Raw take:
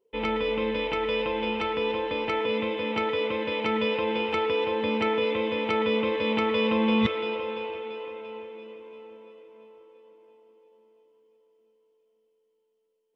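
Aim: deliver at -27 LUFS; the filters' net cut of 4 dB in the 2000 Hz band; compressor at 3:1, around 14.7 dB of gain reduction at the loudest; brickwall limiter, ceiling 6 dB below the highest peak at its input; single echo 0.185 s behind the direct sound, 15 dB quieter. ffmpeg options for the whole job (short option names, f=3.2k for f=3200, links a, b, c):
-af "equalizer=f=2k:t=o:g=-5,acompressor=threshold=-40dB:ratio=3,alimiter=level_in=8.5dB:limit=-24dB:level=0:latency=1,volume=-8.5dB,aecho=1:1:185:0.178,volume=15dB"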